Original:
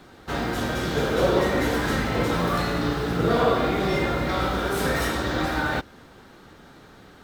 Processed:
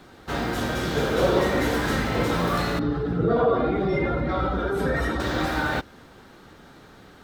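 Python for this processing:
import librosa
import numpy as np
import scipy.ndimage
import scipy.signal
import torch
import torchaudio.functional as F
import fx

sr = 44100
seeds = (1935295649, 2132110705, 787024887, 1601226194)

y = fx.spec_expand(x, sr, power=1.6, at=(2.79, 5.2))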